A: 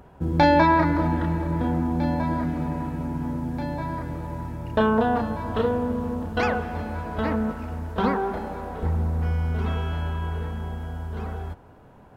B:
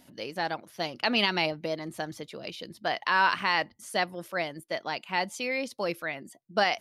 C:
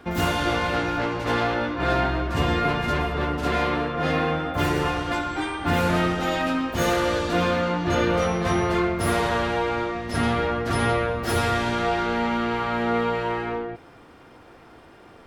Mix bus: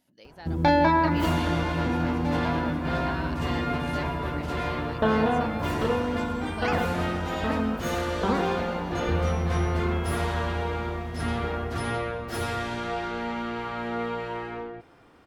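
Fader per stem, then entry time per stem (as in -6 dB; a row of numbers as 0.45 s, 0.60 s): -3.0 dB, -14.5 dB, -7.0 dB; 0.25 s, 0.00 s, 1.05 s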